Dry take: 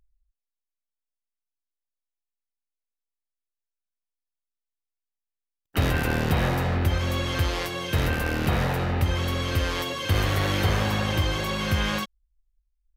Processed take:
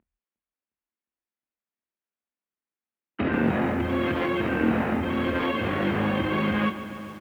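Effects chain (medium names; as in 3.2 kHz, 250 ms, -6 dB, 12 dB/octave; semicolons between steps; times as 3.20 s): tracing distortion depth 0.048 ms; hum notches 60/120/180 Hz; in parallel at 0 dB: compressor with a negative ratio -29 dBFS, ratio -1; on the sum: tempo 1.8×; cabinet simulation 140–2600 Hz, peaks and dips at 140 Hz -6 dB, 220 Hz +9 dB, 330 Hz +5 dB; doubling 26 ms -9 dB; filtered feedback delay 358 ms, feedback 74%, low-pass 1.4 kHz, level -18.5 dB; on a send at -20 dB: reverberation, pre-delay 3 ms; on the sum: bit-crushed delay 142 ms, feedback 80%, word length 7-bit, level -14.5 dB; trim -3.5 dB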